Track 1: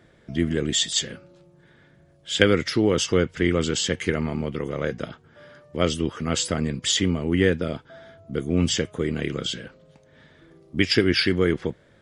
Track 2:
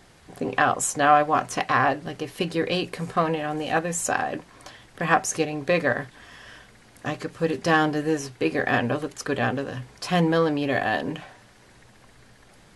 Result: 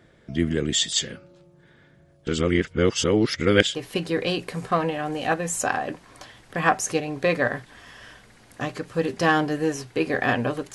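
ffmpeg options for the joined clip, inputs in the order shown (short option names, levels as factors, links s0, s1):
-filter_complex "[0:a]apad=whole_dur=10.74,atrim=end=10.74,asplit=2[s0][s1];[s0]atrim=end=2.272[s2];[s1]atrim=start=2.268:end=3.752,asetpts=PTS-STARTPTS,areverse[s3];[1:a]atrim=start=2.198:end=9.19[s4];[s2][s3]acrossfade=d=0.004:c1=hsin:c2=hsin[s5];[s5][s4]acrossfade=d=0.004:c1=hsin:c2=hsin"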